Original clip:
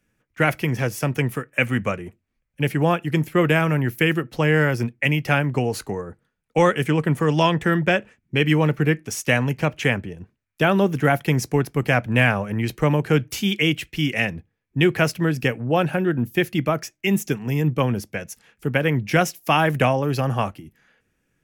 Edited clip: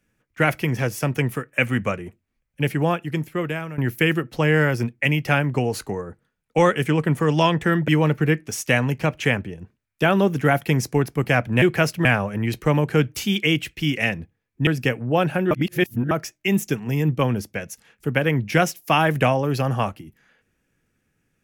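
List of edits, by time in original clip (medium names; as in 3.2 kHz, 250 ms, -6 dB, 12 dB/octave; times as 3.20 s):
2.61–3.78 s: fade out, to -15 dB
7.88–8.47 s: delete
14.83–15.26 s: move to 12.21 s
16.10–16.70 s: reverse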